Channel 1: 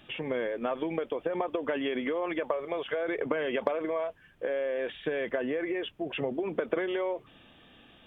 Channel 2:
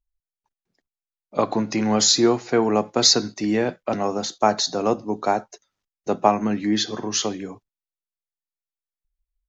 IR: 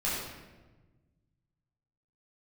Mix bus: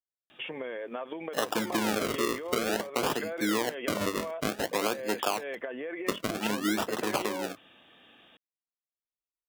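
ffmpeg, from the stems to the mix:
-filter_complex "[0:a]acompressor=threshold=0.0282:ratio=6,adelay=300,volume=1.06[s0];[1:a]afwtdn=0.0251,alimiter=limit=0.224:level=0:latency=1:release=372,acrusher=samples=38:mix=1:aa=0.000001:lfo=1:lforange=38:lforate=0.54,volume=1.19[s1];[s0][s1]amix=inputs=2:normalize=0,highpass=f=410:p=1,acompressor=threshold=0.0631:ratio=5"

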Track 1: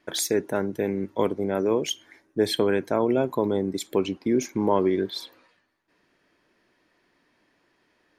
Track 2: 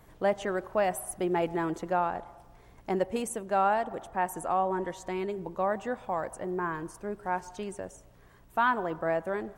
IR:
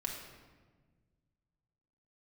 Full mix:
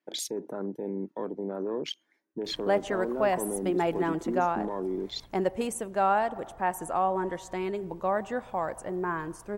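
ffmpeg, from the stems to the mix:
-filter_complex "[0:a]alimiter=limit=0.0891:level=0:latency=1:release=56,highpass=f=160:w=0.5412,highpass=f=160:w=1.3066,afwtdn=0.0126,volume=0.75[s0];[1:a]adelay=2450,volume=1.12[s1];[s0][s1]amix=inputs=2:normalize=0"

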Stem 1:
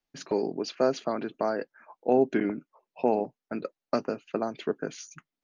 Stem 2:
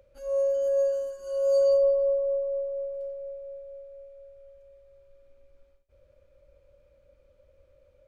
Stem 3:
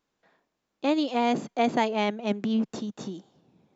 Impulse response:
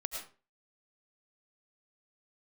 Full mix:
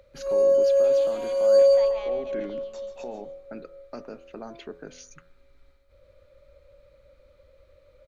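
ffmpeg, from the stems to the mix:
-filter_complex "[0:a]alimiter=limit=0.112:level=0:latency=1:release=24,volume=0.794[s0];[1:a]equalizer=f=1250:t=o:w=0.33:g=7,equalizer=f=2000:t=o:w=0.33:g=7,equalizer=f=4000:t=o:w=0.33:g=11,volume=1.41,asplit=2[s1][s2];[s2]volume=0.562[s3];[2:a]highpass=740,alimiter=limit=0.075:level=0:latency=1,volume=0.398,asplit=2[s4][s5];[s5]volume=0.335[s6];[s0][s4]amix=inputs=2:normalize=0,bandreject=f=85.04:t=h:w=4,bandreject=f=170.08:t=h:w=4,bandreject=f=255.12:t=h:w=4,bandreject=f=340.16:t=h:w=4,bandreject=f=425.2:t=h:w=4,bandreject=f=510.24:t=h:w=4,bandreject=f=595.28:t=h:w=4,bandreject=f=680.32:t=h:w=4,bandreject=f=765.36:t=h:w=4,bandreject=f=850.4:t=h:w=4,bandreject=f=935.44:t=h:w=4,bandreject=f=1020.48:t=h:w=4,bandreject=f=1105.52:t=h:w=4,bandreject=f=1190.56:t=h:w=4,bandreject=f=1275.6:t=h:w=4,bandreject=f=1360.64:t=h:w=4,bandreject=f=1445.68:t=h:w=4,bandreject=f=1530.72:t=h:w=4,bandreject=f=1615.76:t=h:w=4,bandreject=f=1700.8:t=h:w=4,bandreject=f=1785.84:t=h:w=4,bandreject=f=1870.88:t=h:w=4,alimiter=level_in=1.5:limit=0.0631:level=0:latency=1:release=257,volume=0.668,volume=1[s7];[s3][s6]amix=inputs=2:normalize=0,aecho=0:1:138:1[s8];[s1][s7][s8]amix=inputs=3:normalize=0"

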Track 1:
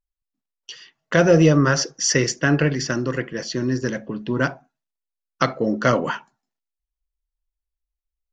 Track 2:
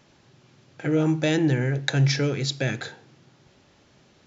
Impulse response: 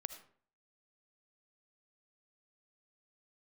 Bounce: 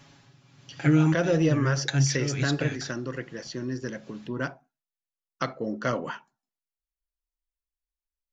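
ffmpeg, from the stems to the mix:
-filter_complex "[0:a]volume=0.335,asplit=2[s0][s1];[1:a]tremolo=f=1.2:d=0.59,equalizer=f=460:t=o:w=0.77:g=-7.5,aecho=1:1:7.2:0.74,volume=1.41[s2];[s1]apad=whole_len=188565[s3];[s2][s3]sidechaincompress=threshold=0.0178:ratio=3:attack=9.4:release=306[s4];[s0][s4]amix=inputs=2:normalize=0"

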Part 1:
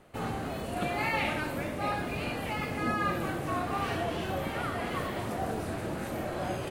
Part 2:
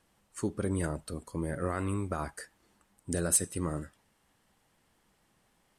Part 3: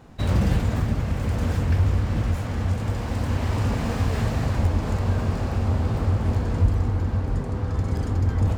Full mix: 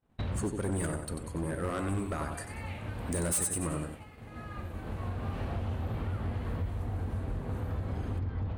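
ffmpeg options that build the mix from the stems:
-filter_complex "[0:a]adelay=1500,volume=0.168[s0];[1:a]adynamicequalizer=threshold=0.00398:dfrequency=9100:dqfactor=2.6:tfrequency=9100:tqfactor=2.6:attack=5:release=100:ratio=0.375:range=3:mode=boostabove:tftype=bell,volume=1.06,asplit=3[s1][s2][s3];[s2]volume=0.422[s4];[2:a]lowpass=f=4200:w=0.5412,lowpass=f=4200:w=1.3066,acompressor=threshold=0.0501:ratio=10,volume=0.631[s5];[s3]apad=whole_len=378267[s6];[s5][s6]sidechaincompress=threshold=0.0178:ratio=16:attack=16:release=1440[s7];[s4]aecho=0:1:93|186|279|372|465:1|0.38|0.144|0.0549|0.0209[s8];[s0][s1][s7][s8]amix=inputs=4:normalize=0,agate=range=0.0224:threshold=0.0126:ratio=3:detection=peak,equalizer=f=5100:t=o:w=0.31:g=-4,asoftclip=type=hard:threshold=0.0447"

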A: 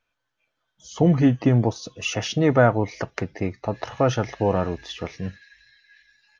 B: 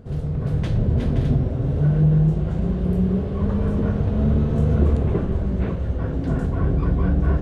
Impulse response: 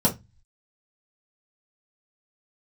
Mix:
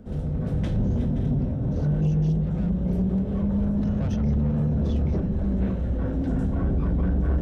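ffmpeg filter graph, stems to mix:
-filter_complex "[0:a]asoftclip=type=tanh:threshold=0.0841,volume=0.282,afade=t=in:st=3.39:d=0.52:silence=0.334965,asplit=2[s0][s1];[1:a]volume=0.596,asplit=2[s2][s3];[s3]volume=0.106[s4];[s1]apad=whole_len=327150[s5];[s2][s5]sidechaincompress=threshold=0.00282:ratio=8:attack=16:release=150[s6];[2:a]atrim=start_sample=2205[s7];[s4][s7]afir=irnorm=-1:irlink=0[s8];[s0][s6][s8]amix=inputs=3:normalize=0,acrossover=split=160|3000[s9][s10][s11];[s10]acompressor=threshold=0.0708:ratio=6[s12];[s9][s12][s11]amix=inputs=3:normalize=0,asoftclip=type=tanh:threshold=0.141"

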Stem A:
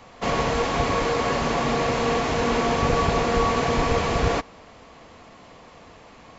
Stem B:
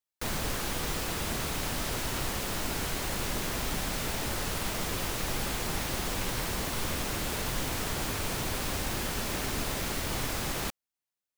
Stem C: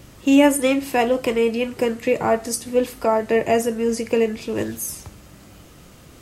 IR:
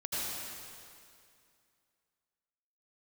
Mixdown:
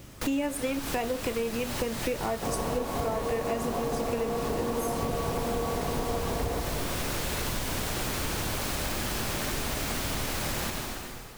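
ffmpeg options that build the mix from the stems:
-filter_complex "[0:a]lowpass=1000,adelay=2200,volume=0.891,asplit=2[s0][s1];[s1]volume=0.355[s2];[1:a]volume=1,asplit=2[s3][s4];[s4]volume=0.596[s5];[2:a]acrusher=bits=8:mix=0:aa=0.000001,volume=0.708,asplit=2[s6][s7];[s7]apad=whole_len=501547[s8];[s3][s8]sidechaincompress=threshold=0.00708:ratio=8:attack=16:release=127[s9];[3:a]atrim=start_sample=2205[s10];[s2][s5]amix=inputs=2:normalize=0[s11];[s11][s10]afir=irnorm=-1:irlink=0[s12];[s0][s9][s6][s12]amix=inputs=4:normalize=0,acompressor=threshold=0.0447:ratio=6"

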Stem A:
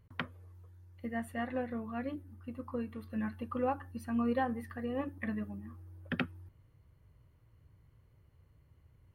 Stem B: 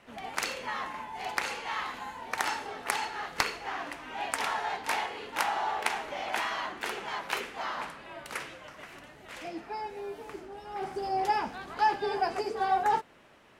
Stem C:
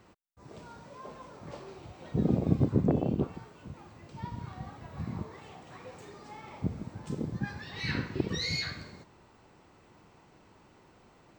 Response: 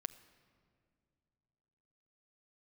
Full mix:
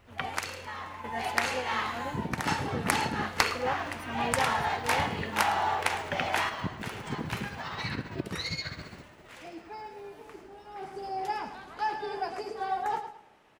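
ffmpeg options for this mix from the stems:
-filter_complex "[0:a]equalizer=f=240:t=o:w=1.2:g=-10.5,volume=1.41,asplit=2[s0][s1];[1:a]volume=1.19,asplit=3[s2][s3][s4];[s3]volume=0.266[s5];[s4]volume=0.15[s6];[2:a]dynaudnorm=f=210:g=17:m=3.76,tremolo=f=15:d=0.68,acompressor=threshold=0.0631:ratio=6,volume=0.473[s7];[s1]apad=whole_len=599375[s8];[s2][s8]sidechaingate=range=0.282:threshold=0.00316:ratio=16:detection=peak[s9];[3:a]atrim=start_sample=2205[s10];[s5][s10]afir=irnorm=-1:irlink=0[s11];[s6]aecho=0:1:108|216|324|432:1|0.3|0.09|0.027[s12];[s0][s9][s7][s11][s12]amix=inputs=5:normalize=0"

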